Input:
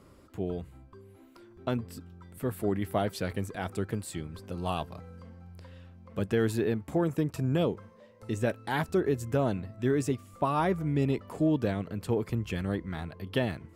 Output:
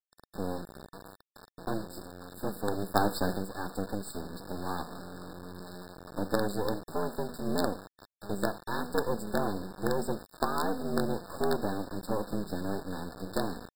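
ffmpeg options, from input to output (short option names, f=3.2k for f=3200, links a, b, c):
-filter_complex "[0:a]asettb=1/sr,asplit=3[a][b][c];[a]atrim=end=1.854[d];[b]atrim=start=1.85:end=2.38,asetpts=PTS-STARTPTS,afade=t=in:d=0.004:c=qsin,afade=t=out:st=0.526:d=0.004:c=qsin,asplit=2[e][f];[f]adelay=39,volume=-7.5dB[g];[e][g]amix=inputs=2:normalize=0,atrim=end_sample=23373[h];[c]atrim=start=2.376[i];[d][h]acrossfade=d=0.004:c1=hsin:c2=qsin[j];[j][i]acrossfade=d=0.004:c1=qsin:c2=hsin,asplit=2[k][l];[l]acompressor=threshold=-41dB:ratio=4,volume=-0.5dB[m];[k][m]amix=inputs=2:normalize=0,afreqshift=93,bandreject=f=243.5:t=h:w=4,bandreject=f=487:t=h:w=4,bandreject=f=730.5:t=h:w=4,bandreject=f=974:t=h:w=4,bandreject=f=1.2175k:t=h:w=4,bandreject=f=1.461k:t=h:w=4,asplit=3[n][o][p];[n]afade=t=out:st=6.74:d=0.02[q];[o]asubboost=boost=11:cutoff=65,afade=t=in:st=6.74:d=0.02,afade=t=out:st=7.45:d=0.02[r];[p]afade=t=in:st=7.45:d=0.02[s];[q][r][s]amix=inputs=3:normalize=0,aecho=1:1:76:0.112,asoftclip=type=tanh:threshold=-15dB,acrusher=bits=4:dc=4:mix=0:aa=0.000001,asplit=3[t][u][v];[t]afade=t=out:st=2.95:d=0.02[w];[u]acontrast=36,afade=t=in:st=2.95:d=0.02,afade=t=out:st=3.36:d=0.02[x];[v]afade=t=in:st=3.36:d=0.02[y];[w][x][y]amix=inputs=3:normalize=0,afftfilt=real='re*eq(mod(floor(b*sr/1024/1800),2),0)':imag='im*eq(mod(floor(b*sr/1024/1800),2),0)':win_size=1024:overlap=0.75"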